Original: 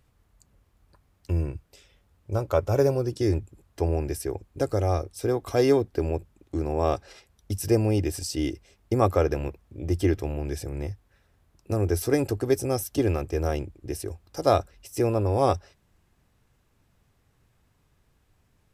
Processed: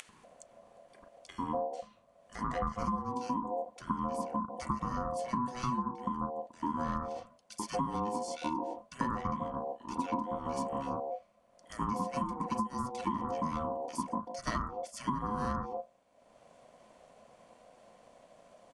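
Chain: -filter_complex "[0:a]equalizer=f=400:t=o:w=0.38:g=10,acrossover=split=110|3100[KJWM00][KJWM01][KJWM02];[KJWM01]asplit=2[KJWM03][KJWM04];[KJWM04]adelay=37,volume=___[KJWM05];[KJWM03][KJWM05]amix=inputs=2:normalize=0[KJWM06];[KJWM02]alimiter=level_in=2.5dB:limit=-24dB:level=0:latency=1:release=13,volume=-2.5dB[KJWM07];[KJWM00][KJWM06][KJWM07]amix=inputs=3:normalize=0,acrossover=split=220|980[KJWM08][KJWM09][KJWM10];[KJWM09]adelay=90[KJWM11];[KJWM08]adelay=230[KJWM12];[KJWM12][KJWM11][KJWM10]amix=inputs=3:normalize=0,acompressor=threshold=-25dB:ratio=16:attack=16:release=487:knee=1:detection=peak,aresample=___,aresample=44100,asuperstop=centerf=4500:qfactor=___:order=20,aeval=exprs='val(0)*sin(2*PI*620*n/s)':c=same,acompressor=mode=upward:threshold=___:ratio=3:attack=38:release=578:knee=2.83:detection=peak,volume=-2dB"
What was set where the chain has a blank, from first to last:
-7dB, 22050, 7.6, -47dB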